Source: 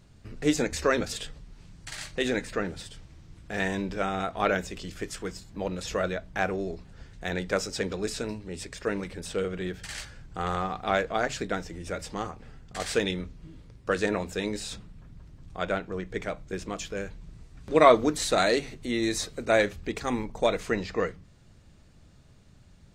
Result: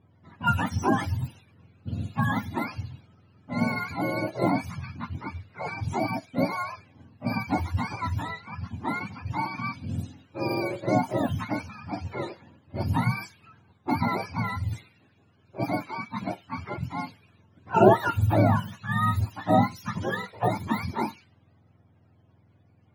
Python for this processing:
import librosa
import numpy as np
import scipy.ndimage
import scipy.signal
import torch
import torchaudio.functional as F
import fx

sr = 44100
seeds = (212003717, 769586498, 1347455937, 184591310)

y = fx.octave_mirror(x, sr, pivot_hz=650.0)
y = fx.env_lowpass(y, sr, base_hz=910.0, full_db=-26.5)
y = y * 10.0 ** (2.5 / 20.0)